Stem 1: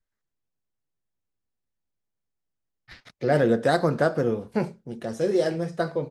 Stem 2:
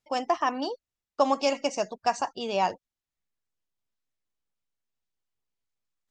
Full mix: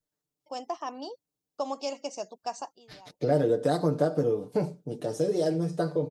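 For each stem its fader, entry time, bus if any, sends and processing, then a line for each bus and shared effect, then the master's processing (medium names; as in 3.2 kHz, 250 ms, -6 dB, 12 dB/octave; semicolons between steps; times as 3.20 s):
+2.0 dB, 0.00 s, no send, bass shelf 460 Hz +7.5 dB; comb 6.7 ms, depth 81%
-3.5 dB, 0.40 s, no send, auto duck -20 dB, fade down 0.25 s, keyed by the first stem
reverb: none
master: high-pass 390 Hz 6 dB/octave; peaking EQ 1.8 kHz -12 dB 1.6 oct; compression 2:1, threshold -26 dBFS, peak gain reduction 8.5 dB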